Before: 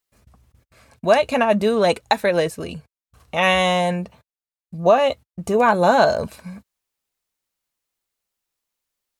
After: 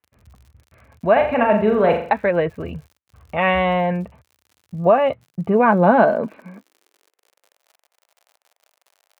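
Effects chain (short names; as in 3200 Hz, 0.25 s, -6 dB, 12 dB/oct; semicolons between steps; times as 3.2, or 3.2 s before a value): inverse Chebyshev low-pass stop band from 6000 Hz, stop band 50 dB; 1.12–2.14 flutter echo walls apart 7.2 m, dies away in 0.48 s; crackle 81/s -41 dBFS; high-pass sweep 74 Hz -> 650 Hz, 4.39–7.73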